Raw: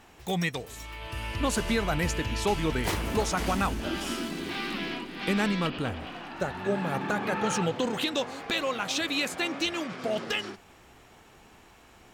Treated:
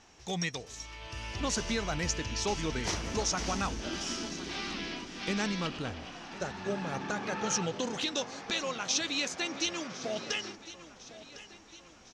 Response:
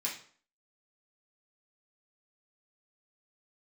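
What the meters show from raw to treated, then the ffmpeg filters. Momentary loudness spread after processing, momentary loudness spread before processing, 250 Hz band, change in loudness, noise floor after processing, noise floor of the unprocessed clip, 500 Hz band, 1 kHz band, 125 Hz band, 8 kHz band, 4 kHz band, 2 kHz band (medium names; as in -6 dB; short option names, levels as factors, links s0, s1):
16 LU, 7 LU, -6.0 dB, -4.0 dB, -55 dBFS, -55 dBFS, -6.0 dB, -5.5 dB, -6.0 dB, +3.0 dB, -1.5 dB, -5.0 dB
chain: -filter_complex "[0:a]lowpass=f=5900:t=q:w=4.6,asplit=2[s0][s1];[s1]aecho=0:1:1055|2110|3165|4220:0.158|0.0792|0.0396|0.0198[s2];[s0][s2]amix=inputs=2:normalize=0,volume=0.501"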